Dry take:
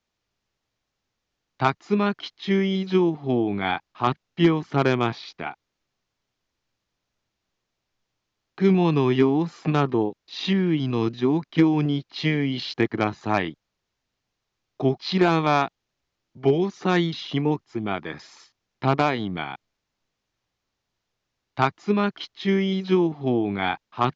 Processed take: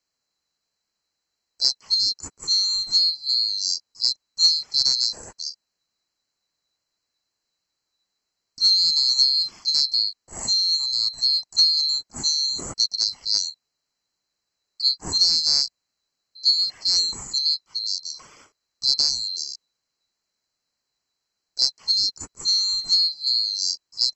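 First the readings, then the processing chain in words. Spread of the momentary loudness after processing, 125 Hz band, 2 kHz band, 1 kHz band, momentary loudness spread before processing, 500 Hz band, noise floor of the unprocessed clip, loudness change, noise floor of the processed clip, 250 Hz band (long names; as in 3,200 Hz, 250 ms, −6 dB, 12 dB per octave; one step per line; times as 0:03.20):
10 LU, below −20 dB, below −20 dB, below −20 dB, 9 LU, below −25 dB, −82 dBFS, +4.0 dB, −81 dBFS, −28.0 dB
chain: neighbouring bands swapped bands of 4,000 Hz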